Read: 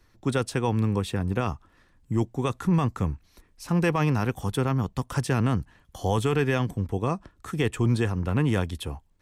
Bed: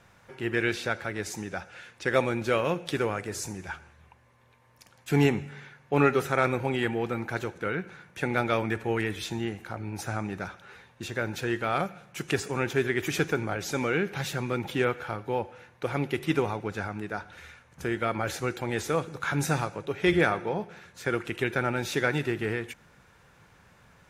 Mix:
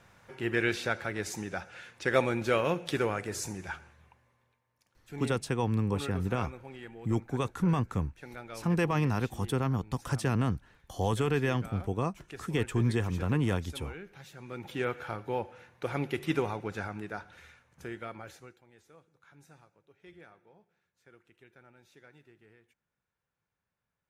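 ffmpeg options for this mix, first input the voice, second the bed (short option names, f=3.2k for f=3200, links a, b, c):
-filter_complex "[0:a]adelay=4950,volume=-4.5dB[a];[1:a]volume=13dB,afade=t=out:st=3.77:d=0.87:silence=0.149624,afade=t=in:st=14.36:d=0.7:silence=0.188365,afade=t=out:st=16.85:d=1.77:silence=0.0446684[b];[a][b]amix=inputs=2:normalize=0"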